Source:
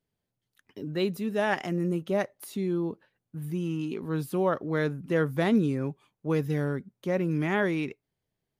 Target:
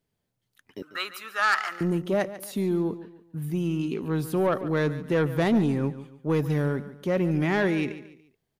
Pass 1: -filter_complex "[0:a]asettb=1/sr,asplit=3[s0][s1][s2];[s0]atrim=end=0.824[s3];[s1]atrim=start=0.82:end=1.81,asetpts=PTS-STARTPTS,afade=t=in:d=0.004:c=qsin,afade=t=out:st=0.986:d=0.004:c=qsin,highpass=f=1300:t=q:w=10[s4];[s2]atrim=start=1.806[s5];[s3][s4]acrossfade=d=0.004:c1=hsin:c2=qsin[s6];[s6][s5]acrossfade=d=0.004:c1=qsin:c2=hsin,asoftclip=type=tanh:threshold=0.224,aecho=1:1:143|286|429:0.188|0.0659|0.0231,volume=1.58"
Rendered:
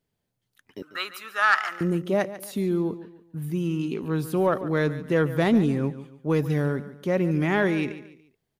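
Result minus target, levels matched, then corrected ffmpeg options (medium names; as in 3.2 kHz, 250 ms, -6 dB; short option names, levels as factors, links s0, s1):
saturation: distortion -8 dB
-filter_complex "[0:a]asettb=1/sr,asplit=3[s0][s1][s2];[s0]atrim=end=0.824[s3];[s1]atrim=start=0.82:end=1.81,asetpts=PTS-STARTPTS,afade=t=in:d=0.004:c=qsin,afade=t=out:st=0.986:d=0.004:c=qsin,highpass=f=1300:t=q:w=10[s4];[s2]atrim=start=1.806[s5];[s3][s4]acrossfade=d=0.004:c1=hsin:c2=qsin[s6];[s6][s5]acrossfade=d=0.004:c1=qsin:c2=hsin,asoftclip=type=tanh:threshold=0.1,aecho=1:1:143|286|429:0.188|0.0659|0.0231,volume=1.58"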